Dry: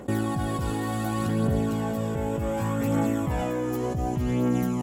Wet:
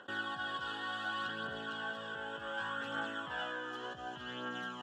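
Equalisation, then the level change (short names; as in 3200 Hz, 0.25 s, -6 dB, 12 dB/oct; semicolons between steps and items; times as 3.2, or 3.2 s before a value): double band-pass 2200 Hz, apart 1 oct; air absorption 63 m; +7.5 dB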